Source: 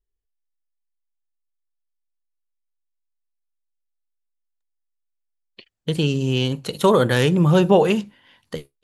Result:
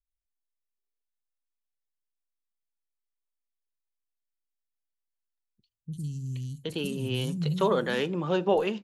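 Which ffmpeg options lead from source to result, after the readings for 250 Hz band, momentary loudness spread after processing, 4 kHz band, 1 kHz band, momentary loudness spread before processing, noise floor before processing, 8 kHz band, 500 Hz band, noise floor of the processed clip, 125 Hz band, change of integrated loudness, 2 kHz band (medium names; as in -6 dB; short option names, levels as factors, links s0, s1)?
-11.0 dB, 10 LU, -9.0 dB, -8.5 dB, 18 LU, -76 dBFS, -10.5 dB, -9.0 dB, -85 dBFS, -10.5 dB, -10.5 dB, -8.5 dB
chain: -filter_complex "[0:a]acrossover=split=190|6000[s0][s1][s2];[s2]adelay=50[s3];[s1]adelay=770[s4];[s0][s4][s3]amix=inputs=3:normalize=0,volume=0.376"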